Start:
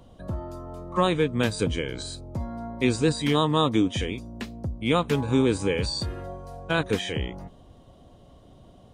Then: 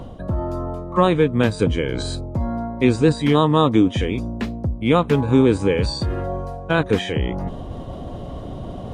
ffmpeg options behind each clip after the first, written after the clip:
-af "highshelf=f=3000:g=-11.5,areverse,acompressor=mode=upward:threshold=0.0562:ratio=2.5,areverse,volume=2.24"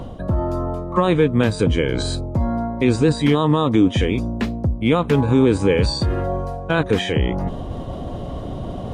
-af "alimiter=level_in=2.51:limit=0.891:release=50:level=0:latency=1,volume=0.562"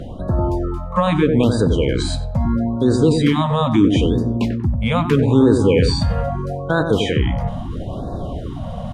-filter_complex "[0:a]asplit=2[s0][s1];[s1]adelay=94,lowpass=f=1000:p=1,volume=0.562,asplit=2[s2][s3];[s3]adelay=94,lowpass=f=1000:p=1,volume=0.5,asplit=2[s4][s5];[s5]adelay=94,lowpass=f=1000:p=1,volume=0.5,asplit=2[s6][s7];[s7]adelay=94,lowpass=f=1000:p=1,volume=0.5,asplit=2[s8][s9];[s9]adelay=94,lowpass=f=1000:p=1,volume=0.5,asplit=2[s10][s11];[s11]adelay=94,lowpass=f=1000:p=1,volume=0.5[s12];[s0][s2][s4][s6][s8][s10][s12]amix=inputs=7:normalize=0,afftfilt=real='re*(1-between(b*sr/1024,320*pow(2600/320,0.5+0.5*sin(2*PI*0.77*pts/sr))/1.41,320*pow(2600/320,0.5+0.5*sin(2*PI*0.77*pts/sr))*1.41))':imag='im*(1-between(b*sr/1024,320*pow(2600/320,0.5+0.5*sin(2*PI*0.77*pts/sr))/1.41,320*pow(2600/320,0.5+0.5*sin(2*PI*0.77*pts/sr))*1.41))':win_size=1024:overlap=0.75,volume=1.12"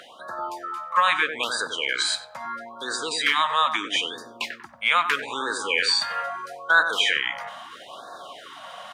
-af "highpass=f=1500:t=q:w=1.8,volume=1.41"

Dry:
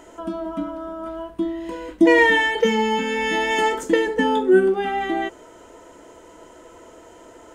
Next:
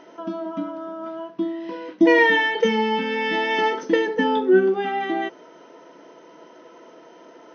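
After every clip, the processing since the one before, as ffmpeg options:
-af "afftfilt=real='re*between(b*sr/4096,130,6300)':imag='im*between(b*sr/4096,130,6300)':win_size=4096:overlap=0.75,volume=0.891"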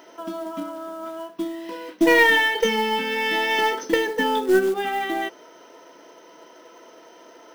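-af "aemphasis=mode=production:type=bsi,acrusher=bits=5:mode=log:mix=0:aa=0.000001,aeval=exprs='0.531*(cos(1*acos(clip(val(0)/0.531,-1,1)))-cos(1*PI/2))+0.0531*(cos(2*acos(clip(val(0)/0.531,-1,1)))-cos(2*PI/2))':c=same"

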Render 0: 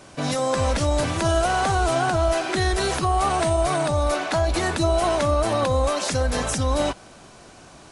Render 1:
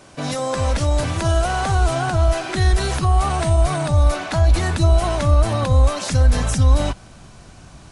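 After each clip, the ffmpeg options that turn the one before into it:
-af "asubboost=boost=4:cutoff=180"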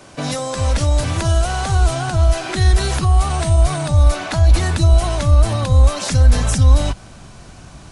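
-filter_complex "[0:a]acrossover=split=140|3000[s0][s1][s2];[s1]acompressor=threshold=0.0562:ratio=6[s3];[s0][s3][s2]amix=inputs=3:normalize=0,volume=1.5"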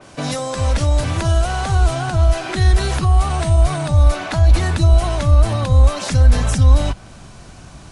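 -af "adynamicequalizer=threshold=0.00891:dfrequency=4000:dqfactor=0.7:tfrequency=4000:tqfactor=0.7:attack=5:release=100:ratio=0.375:range=2:mode=cutabove:tftype=highshelf"

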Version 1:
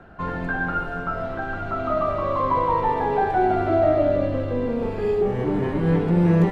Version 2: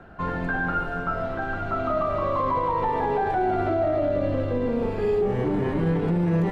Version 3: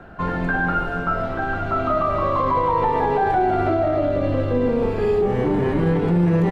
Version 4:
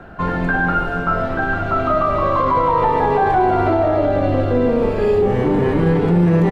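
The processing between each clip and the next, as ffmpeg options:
-af "alimiter=limit=0.158:level=0:latency=1:release=37"
-filter_complex "[0:a]asplit=2[s0][s1];[s1]adelay=28,volume=0.251[s2];[s0][s2]amix=inputs=2:normalize=0,volume=1.68"
-af "aecho=1:1:883:0.224,volume=1.5"

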